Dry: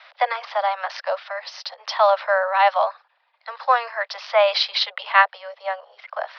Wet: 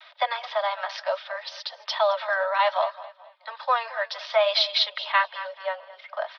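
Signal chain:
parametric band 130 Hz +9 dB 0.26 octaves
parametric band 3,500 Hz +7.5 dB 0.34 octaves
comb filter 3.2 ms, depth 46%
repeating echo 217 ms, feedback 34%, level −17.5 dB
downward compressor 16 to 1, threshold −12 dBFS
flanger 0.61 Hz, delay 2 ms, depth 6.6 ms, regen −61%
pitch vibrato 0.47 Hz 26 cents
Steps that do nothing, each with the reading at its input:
parametric band 130 Hz: nothing at its input below 450 Hz

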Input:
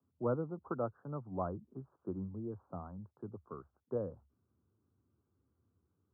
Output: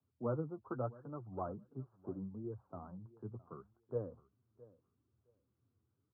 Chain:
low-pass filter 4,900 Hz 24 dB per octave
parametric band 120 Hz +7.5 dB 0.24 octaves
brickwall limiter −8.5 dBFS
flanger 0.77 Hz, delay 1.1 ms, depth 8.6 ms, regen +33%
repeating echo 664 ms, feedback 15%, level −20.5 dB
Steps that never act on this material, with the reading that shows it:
low-pass filter 4,900 Hz: nothing at its input above 1,400 Hz
brickwall limiter −8.5 dBFS: peak of its input −22.0 dBFS

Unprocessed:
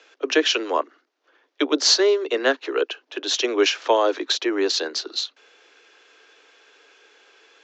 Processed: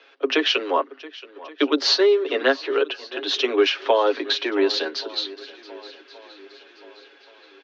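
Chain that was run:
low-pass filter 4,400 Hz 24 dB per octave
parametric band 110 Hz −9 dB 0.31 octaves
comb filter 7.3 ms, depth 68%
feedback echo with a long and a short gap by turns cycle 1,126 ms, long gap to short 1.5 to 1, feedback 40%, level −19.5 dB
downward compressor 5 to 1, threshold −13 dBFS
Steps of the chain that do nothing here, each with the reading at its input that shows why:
parametric band 110 Hz: nothing at its input below 230 Hz

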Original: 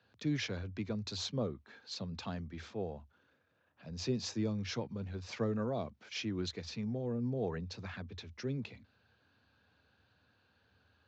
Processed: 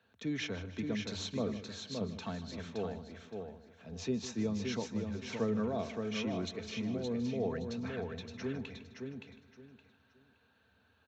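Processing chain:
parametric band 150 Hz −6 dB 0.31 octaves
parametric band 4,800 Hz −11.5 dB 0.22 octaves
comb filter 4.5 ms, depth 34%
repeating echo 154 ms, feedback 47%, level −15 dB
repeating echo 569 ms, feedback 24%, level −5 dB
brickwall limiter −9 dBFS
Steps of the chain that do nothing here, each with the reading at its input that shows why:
brickwall limiter −9 dBFS: peak of its input −22.0 dBFS

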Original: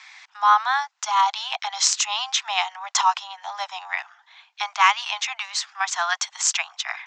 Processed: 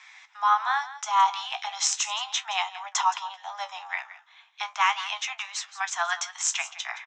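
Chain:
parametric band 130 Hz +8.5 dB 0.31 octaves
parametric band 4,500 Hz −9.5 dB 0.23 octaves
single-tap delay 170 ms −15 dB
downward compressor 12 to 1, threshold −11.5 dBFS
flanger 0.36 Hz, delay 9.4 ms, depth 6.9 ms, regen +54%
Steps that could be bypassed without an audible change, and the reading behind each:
parametric band 130 Hz: nothing at its input below 570 Hz

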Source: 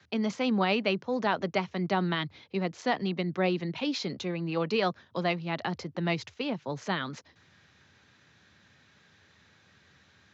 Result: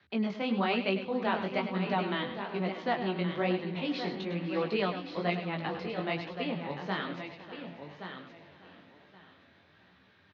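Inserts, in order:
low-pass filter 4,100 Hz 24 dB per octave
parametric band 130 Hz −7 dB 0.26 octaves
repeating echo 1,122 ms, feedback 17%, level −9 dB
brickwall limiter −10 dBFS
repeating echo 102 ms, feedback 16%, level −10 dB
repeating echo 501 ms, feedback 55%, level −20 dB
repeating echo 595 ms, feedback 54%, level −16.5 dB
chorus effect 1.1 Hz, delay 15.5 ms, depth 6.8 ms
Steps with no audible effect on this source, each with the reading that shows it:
brickwall limiter −10 dBFS: peak of its input −13.0 dBFS

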